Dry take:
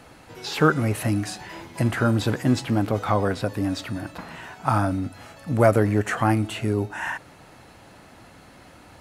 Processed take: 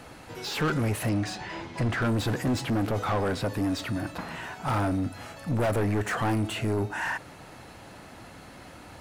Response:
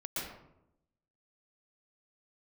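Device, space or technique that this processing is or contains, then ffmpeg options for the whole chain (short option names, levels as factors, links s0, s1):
saturation between pre-emphasis and de-emphasis: -filter_complex "[0:a]asettb=1/sr,asplit=3[s0][s1][s2];[s0]atrim=end=1.094[s3];[s1]atrim=start=1.09:end=2.02,asetpts=PTS-STARTPTS,afade=t=in:d=0.004:c=qsin,afade=t=out:st=0.926:d=0.004:c=qsin,lowpass=5800[s4];[s2]atrim=start=2.016[s5];[s3][s4]acrossfade=d=0.004:c1=hsin:c2=qsin[s6];[s6][s5]acrossfade=d=0.004:c1=qsin:c2=hsin,highshelf=f=2900:g=12,asoftclip=type=tanh:threshold=0.0631,highshelf=f=2900:g=-12,volume=1.26"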